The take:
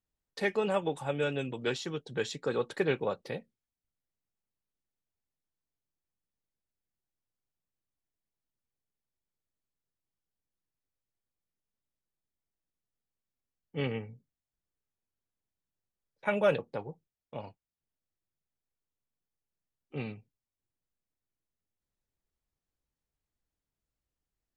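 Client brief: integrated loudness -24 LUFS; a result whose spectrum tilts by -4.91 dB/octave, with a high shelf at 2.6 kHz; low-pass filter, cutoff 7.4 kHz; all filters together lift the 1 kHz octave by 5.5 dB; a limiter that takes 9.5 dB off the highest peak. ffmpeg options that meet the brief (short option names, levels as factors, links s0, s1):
-af "lowpass=7400,equalizer=f=1000:t=o:g=8,highshelf=f=2600:g=-5.5,volume=3.55,alimiter=limit=0.316:level=0:latency=1"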